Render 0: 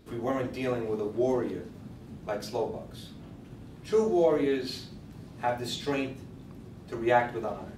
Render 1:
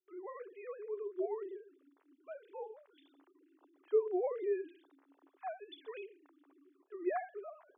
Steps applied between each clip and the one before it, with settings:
three sine waves on the formant tracks
noise gate with hold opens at −51 dBFS
Chebyshev high-pass with heavy ripple 270 Hz, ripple 6 dB
level −7.5 dB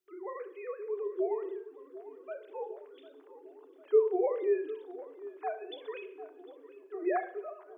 mains-hum notches 60/120/180/240/300/360 Hz
tape delay 750 ms, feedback 73%, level −14.5 dB, low-pass 1,600 Hz
on a send at −13 dB: convolution reverb RT60 0.75 s, pre-delay 34 ms
on the sum: level +5.5 dB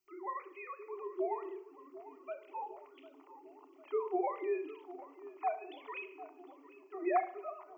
phaser with its sweep stopped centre 2,400 Hz, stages 8
level +5.5 dB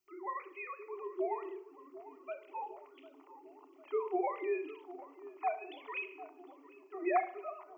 dynamic equaliser 2,500 Hz, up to +5 dB, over −59 dBFS, Q 1.6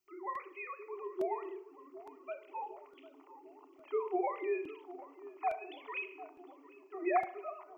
regular buffer underruns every 0.86 s, samples 128, repeat, from 0:00.35

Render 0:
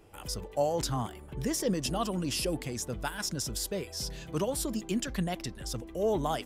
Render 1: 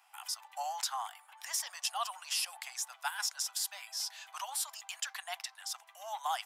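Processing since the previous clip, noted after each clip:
Butterworth high-pass 740 Hz 72 dB per octave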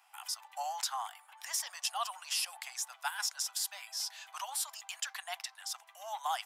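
no processing that can be heard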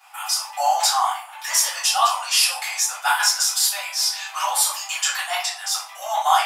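convolution reverb RT60 0.50 s, pre-delay 3 ms, DRR −11.5 dB
level +4 dB

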